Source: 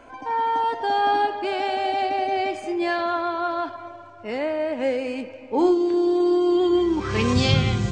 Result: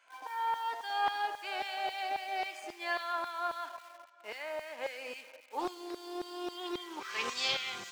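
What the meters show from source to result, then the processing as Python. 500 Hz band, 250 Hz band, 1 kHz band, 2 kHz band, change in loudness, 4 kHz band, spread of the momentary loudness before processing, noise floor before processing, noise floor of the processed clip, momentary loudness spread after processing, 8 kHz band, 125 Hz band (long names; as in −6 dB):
−19.0 dB, −24.0 dB, −11.5 dB, −7.0 dB, −14.0 dB, −6.5 dB, 9 LU, −42 dBFS, −56 dBFS, 11 LU, can't be measured, below −35 dB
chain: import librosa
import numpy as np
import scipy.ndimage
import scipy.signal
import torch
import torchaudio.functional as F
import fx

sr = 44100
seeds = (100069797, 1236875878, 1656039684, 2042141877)

p1 = fx.quant_dither(x, sr, seeds[0], bits=6, dither='none')
p2 = x + (p1 * librosa.db_to_amplitude(-11.0))
p3 = fx.filter_lfo_highpass(p2, sr, shape='saw_down', hz=3.7, low_hz=610.0, high_hz=2100.0, q=0.7)
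p4 = fx.doppler_dist(p3, sr, depth_ms=0.21)
y = p4 * librosa.db_to_amplitude(-8.5)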